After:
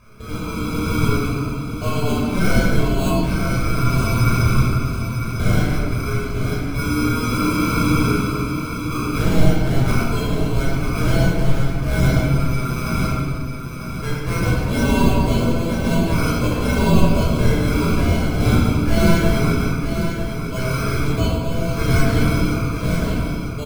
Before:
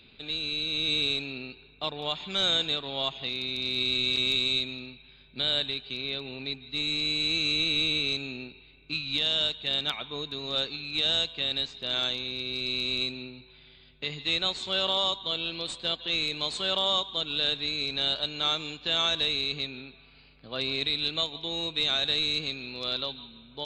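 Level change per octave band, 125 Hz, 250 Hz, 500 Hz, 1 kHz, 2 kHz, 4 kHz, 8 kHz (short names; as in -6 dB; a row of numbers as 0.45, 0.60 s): +26.5, +20.5, +12.5, +13.5, +7.5, -8.0, +13.5 dB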